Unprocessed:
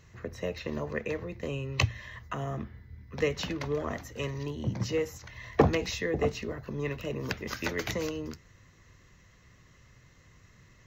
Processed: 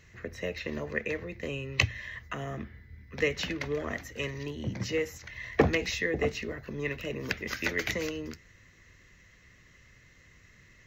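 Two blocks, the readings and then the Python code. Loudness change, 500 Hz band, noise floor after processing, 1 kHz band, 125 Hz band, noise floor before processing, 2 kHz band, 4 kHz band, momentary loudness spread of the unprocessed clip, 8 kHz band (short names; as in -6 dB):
0.0 dB, -1.0 dB, -59 dBFS, -3.0 dB, -3.0 dB, -59 dBFS, +5.0 dB, +2.0 dB, 10 LU, +0.5 dB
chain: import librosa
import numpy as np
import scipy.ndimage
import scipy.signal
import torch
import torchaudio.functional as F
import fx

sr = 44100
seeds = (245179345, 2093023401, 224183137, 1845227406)

y = fx.graphic_eq(x, sr, hz=(125, 1000, 2000), db=(-4, -6, 7))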